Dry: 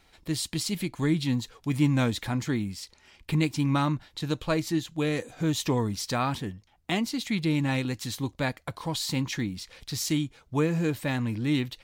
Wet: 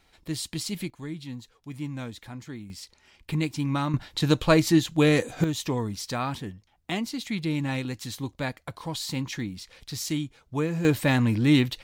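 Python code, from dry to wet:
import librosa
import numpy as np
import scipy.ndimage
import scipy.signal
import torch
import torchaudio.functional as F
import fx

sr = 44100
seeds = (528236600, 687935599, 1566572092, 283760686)

y = fx.gain(x, sr, db=fx.steps((0.0, -2.0), (0.9, -11.0), (2.7, -2.0), (3.94, 7.5), (5.44, -2.0), (10.85, 6.5)))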